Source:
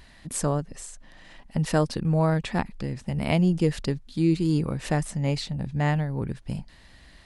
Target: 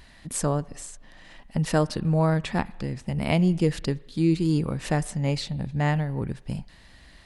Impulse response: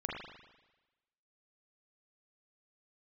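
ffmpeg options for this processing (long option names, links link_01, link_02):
-filter_complex "[0:a]asplit=2[link_01][link_02];[1:a]atrim=start_sample=2205,lowshelf=frequency=320:gain=-12[link_03];[link_02][link_03]afir=irnorm=-1:irlink=0,volume=-20dB[link_04];[link_01][link_04]amix=inputs=2:normalize=0"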